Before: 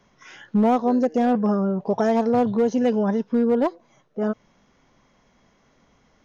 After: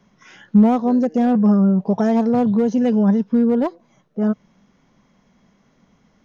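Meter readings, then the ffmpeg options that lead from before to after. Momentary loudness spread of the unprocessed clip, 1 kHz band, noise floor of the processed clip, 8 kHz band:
8 LU, -1.0 dB, -60 dBFS, n/a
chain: -af "equalizer=f=190:t=o:w=0.78:g=10,volume=-1dB"

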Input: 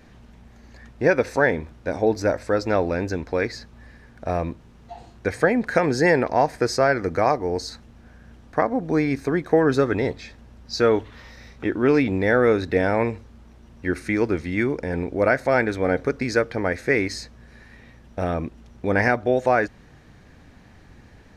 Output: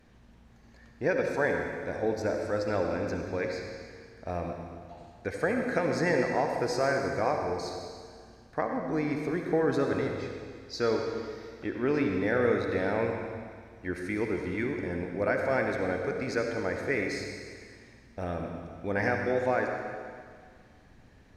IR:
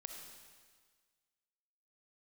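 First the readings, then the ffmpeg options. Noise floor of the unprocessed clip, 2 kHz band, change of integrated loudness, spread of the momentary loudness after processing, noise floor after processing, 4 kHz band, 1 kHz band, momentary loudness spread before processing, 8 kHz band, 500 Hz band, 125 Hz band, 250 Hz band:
-50 dBFS, -7.5 dB, -8.0 dB, 15 LU, -56 dBFS, -7.5 dB, -8.0 dB, 11 LU, -7.5 dB, -7.5 dB, -8.0 dB, -8.0 dB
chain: -filter_complex "[1:a]atrim=start_sample=2205,asetrate=36603,aresample=44100[a];[0:a][a]afir=irnorm=-1:irlink=0,volume=-5dB"

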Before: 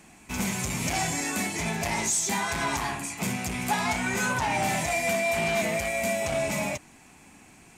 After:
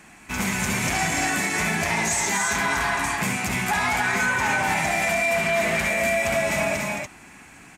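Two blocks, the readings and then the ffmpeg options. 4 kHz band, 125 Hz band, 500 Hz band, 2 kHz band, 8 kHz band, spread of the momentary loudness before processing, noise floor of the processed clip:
+3.5 dB, +2.5 dB, +3.5 dB, +7.5 dB, +2.5 dB, 5 LU, -47 dBFS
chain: -af "equalizer=f=1.6k:w=1.1:g=8,aecho=1:1:67.06|218.7|288.6:0.282|0.447|0.631,alimiter=limit=-15.5dB:level=0:latency=1,volume=1.5dB"

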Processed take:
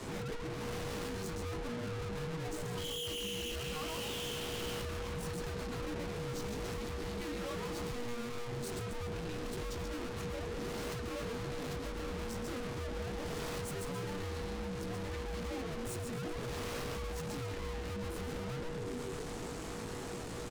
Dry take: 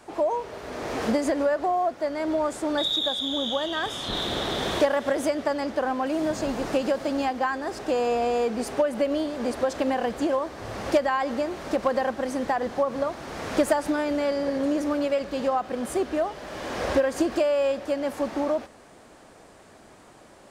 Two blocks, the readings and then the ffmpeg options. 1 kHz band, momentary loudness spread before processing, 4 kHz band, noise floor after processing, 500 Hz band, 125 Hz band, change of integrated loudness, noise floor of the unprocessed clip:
-17.0 dB, 6 LU, -11.5 dB, -42 dBFS, -15.5 dB, +3.0 dB, -13.5 dB, -51 dBFS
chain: -filter_complex "[0:a]asplit=7[a][b][c][d][e][f][g];[b]adelay=133,afreqshift=-130,volume=-4.5dB[h];[c]adelay=266,afreqshift=-260,volume=-11.1dB[i];[d]adelay=399,afreqshift=-390,volume=-17.6dB[j];[e]adelay=532,afreqshift=-520,volume=-24.2dB[k];[f]adelay=665,afreqshift=-650,volume=-30.7dB[l];[g]adelay=798,afreqshift=-780,volume=-37.3dB[m];[a][h][i][j][k][l][m]amix=inputs=7:normalize=0,acompressor=threshold=-33dB:ratio=12,flanger=delay=16:depth=5.4:speed=0.19,acrossover=split=370|3000[n][o][p];[n]acompressor=threshold=-46dB:ratio=6[q];[q][o][p]amix=inputs=3:normalize=0,aeval=exprs='(tanh(631*val(0)+0.7)-tanh(0.7))/631':c=same,afreqshift=-480,volume=16.5dB"

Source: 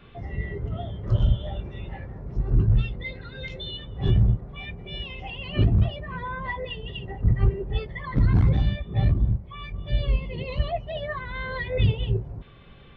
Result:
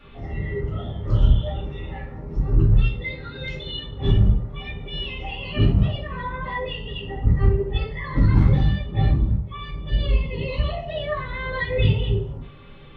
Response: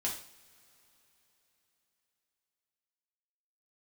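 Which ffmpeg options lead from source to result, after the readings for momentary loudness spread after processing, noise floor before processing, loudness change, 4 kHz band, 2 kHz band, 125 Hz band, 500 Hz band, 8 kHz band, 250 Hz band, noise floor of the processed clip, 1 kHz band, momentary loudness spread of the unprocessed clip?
13 LU, -48 dBFS, +3.0 dB, +4.0 dB, +3.5 dB, +2.5 dB, +4.5 dB, n/a, +4.0 dB, -41 dBFS, +3.0 dB, 14 LU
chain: -filter_complex "[1:a]atrim=start_sample=2205,afade=t=out:st=0.43:d=0.01,atrim=end_sample=19404,asetrate=57330,aresample=44100[a];[0:a][a]afir=irnorm=-1:irlink=0,volume=3.5dB"

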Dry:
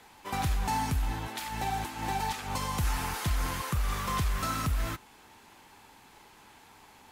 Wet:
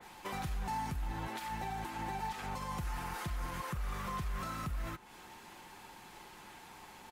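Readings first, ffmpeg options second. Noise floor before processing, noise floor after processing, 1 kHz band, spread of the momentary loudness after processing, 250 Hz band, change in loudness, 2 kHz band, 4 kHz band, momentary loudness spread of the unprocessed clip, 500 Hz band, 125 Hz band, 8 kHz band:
-57 dBFS, -55 dBFS, -6.5 dB, 14 LU, -6.5 dB, -7.5 dB, -7.0 dB, -10.0 dB, 5 LU, -5.5 dB, -8.5 dB, -11.5 dB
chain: -af "alimiter=level_in=8.5dB:limit=-24dB:level=0:latency=1:release=216,volume=-8.5dB,aecho=1:1:5.6:0.34,adynamicequalizer=threshold=0.00141:dfrequency=2600:dqfactor=0.7:tfrequency=2600:tqfactor=0.7:attack=5:release=100:ratio=0.375:range=3:mode=cutabove:tftype=highshelf,volume=2dB"

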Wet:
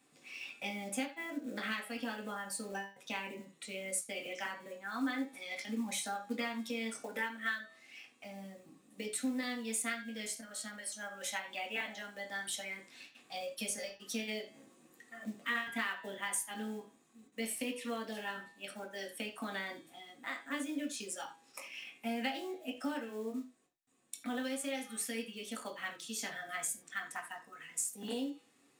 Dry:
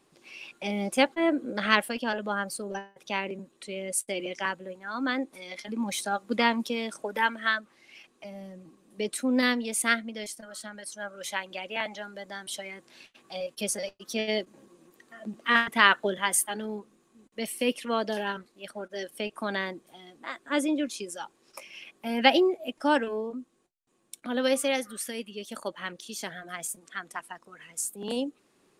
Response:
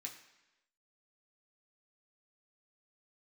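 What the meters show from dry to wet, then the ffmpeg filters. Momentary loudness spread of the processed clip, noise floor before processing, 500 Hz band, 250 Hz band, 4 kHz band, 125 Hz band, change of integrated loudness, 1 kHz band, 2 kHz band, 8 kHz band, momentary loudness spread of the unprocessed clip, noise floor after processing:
11 LU, -67 dBFS, -13.0 dB, -9.0 dB, -10.5 dB, n/a, -10.5 dB, -13.0 dB, -10.0 dB, -5.5 dB, 18 LU, -68 dBFS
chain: -filter_complex "[0:a]acrusher=bits=6:mode=log:mix=0:aa=0.000001,bandreject=f=162.9:t=h:w=4,bandreject=f=325.8:t=h:w=4,bandreject=f=488.7:t=h:w=4,bandreject=f=651.6:t=h:w=4,bandreject=f=814.5:t=h:w=4,bandreject=f=977.4:t=h:w=4,bandreject=f=1.1403k:t=h:w=4,bandreject=f=1.3032k:t=h:w=4,bandreject=f=1.4661k:t=h:w=4,bandreject=f=1.629k:t=h:w=4,bandreject=f=1.7919k:t=h:w=4,bandreject=f=1.9548k:t=h:w=4,bandreject=f=2.1177k:t=h:w=4,bandreject=f=2.2806k:t=h:w=4,bandreject=f=2.4435k:t=h:w=4,bandreject=f=2.6064k:t=h:w=4,bandreject=f=2.7693k:t=h:w=4,bandreject=f=2.9322k:t=h:w=4,bandreject=f=3.0951k:t=h:w=4,bandreject=f=3.258k:t=h:w=4,bandreject=f=3.4209k:t=h:w=4,bandreject=f=3.5838k:t=h:w=4,bandreject=f=3.7467k:t=h:w=4,bandreject=f=3.9096k:t=h:w=4,bandreject=f=4.0725k:t=h:w=4,bandreject=f=4.2354k:t=h:w=4,bandreject=f=4.3983k:t=h:w=4,bandreject=f=4.5612k:t=h:w=4,bandreject=f=4.7241k:t=h:w=4,bandreject=f=4.887k:t=h:w=4,bandreject=f=5.0499k:t=h:w=4,bandreject=f=5.2128k:t=h:w=4,bandreject=f=5.3757k:t=h:w=4,bandreject=f=5.5386k:t=h:w=4,bandreject=f=5.7015k:t=h:w=4,bandreject=f=5.8644k:t=h:w=4,bandreject=f=6.0273k:t=h:w=4,acompressor=threshold=-32dB:ratio=6[a];[1:a]atrim=start_sample=2205,atrim=end_sample=4410[b];[a][b]afir=irnorm=-1:irlink=0,volume=2dB"

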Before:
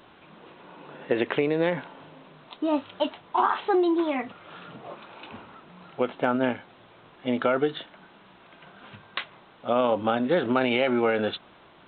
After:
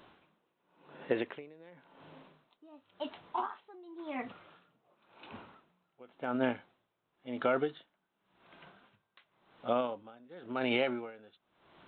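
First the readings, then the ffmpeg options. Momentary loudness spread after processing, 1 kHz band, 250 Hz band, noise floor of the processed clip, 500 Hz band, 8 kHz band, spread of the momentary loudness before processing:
20 LU, -11.5 dB, -12.0 dB, -82 dBFS, -11.0 dB, n/a, 20 LU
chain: -af "aeval=exprs='val(0)*pow(10,-26*(0.5-0.5*cos(2*PI*0.93*n/s))/20)':c=same,volume=-5.5dB"

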